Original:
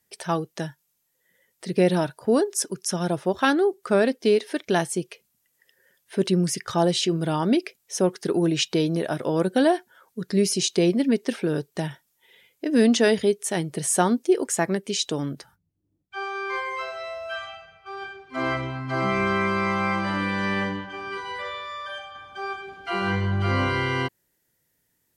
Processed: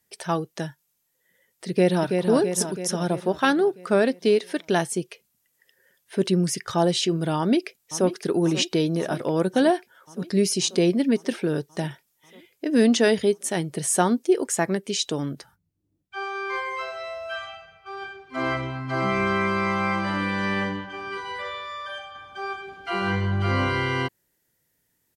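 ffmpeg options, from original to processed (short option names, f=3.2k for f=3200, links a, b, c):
-filter_complex "[0:a]asplit=2[a][b];[b]afade=t=in:st=1.69:d=0.01,afade=t=out:st=2.29:d=0.01,aecho=0:1:330|660|990|1320|1650|1980|2310|2640:0.562341|0.337405|0.202443|0.121466|0.0728794|0.0437277|0.0262366|0.015742[c];[a][c]amix=inputs=2:normalize=0,asplit=2[d][e];[e]afade=t=in:st=7.37:d=0.01,afade=t=out:st=8.08:d=0.01,aecho=0:1:540|1080|1620|2160|2700|3240|3780|4320|4860|5400|5940:0.211349|0.158512|0.118884|0.0891628|0.0668721|0.0501541|0.0376156|0.0282117|0.0211588|0.0158691|0.0119018[f];[d][f]amix=inputs=2:normalize=0"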